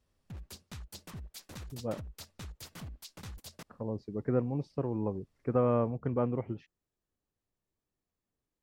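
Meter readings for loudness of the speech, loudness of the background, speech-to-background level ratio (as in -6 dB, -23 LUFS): -33.5 LUFS, -47.5 LUFS, 14.0 dB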